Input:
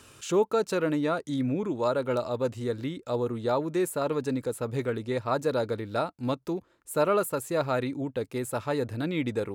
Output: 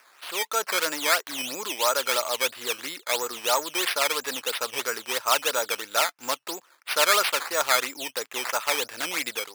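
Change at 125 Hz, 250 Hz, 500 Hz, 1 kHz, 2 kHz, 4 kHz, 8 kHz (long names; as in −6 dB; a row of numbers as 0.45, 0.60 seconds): below −20 dB, −12.5 dB, −3.5 dB, +5.5 dB, +12.0 dB, +17.0 dB, +15.0 dB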